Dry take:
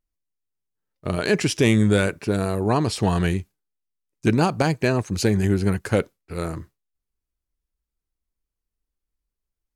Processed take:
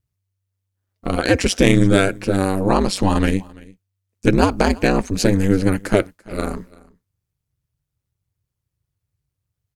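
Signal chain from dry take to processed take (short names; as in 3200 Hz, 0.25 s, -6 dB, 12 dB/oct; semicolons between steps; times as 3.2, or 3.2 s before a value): ring modulator 96 Hz; on a send: echo 0.338 s -23.5 dB; on the sum: gain +7 dB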